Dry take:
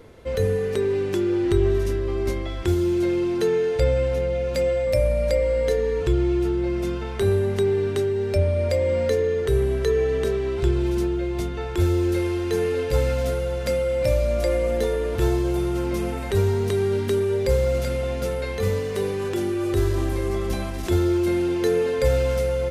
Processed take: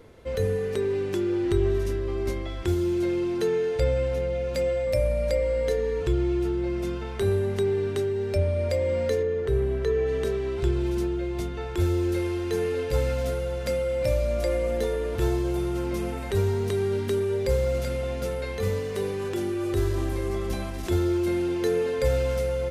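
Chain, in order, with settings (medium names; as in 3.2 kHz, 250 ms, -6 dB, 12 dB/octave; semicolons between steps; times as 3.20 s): 9.22–10.06 s: treble shelf 3 kHz -> 5.6 kHz -11.5 dB; trim -3.5 dB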